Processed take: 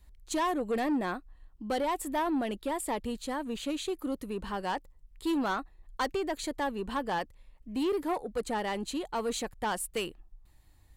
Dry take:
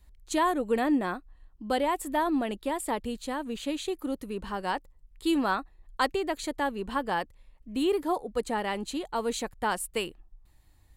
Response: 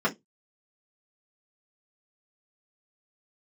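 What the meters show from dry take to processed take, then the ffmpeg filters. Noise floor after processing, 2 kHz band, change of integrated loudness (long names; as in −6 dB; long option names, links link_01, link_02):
−60 dBFS, −3.5 dB, −3.0 dB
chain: -af "asoftclip=type=tanh:threshold=-24.5dB"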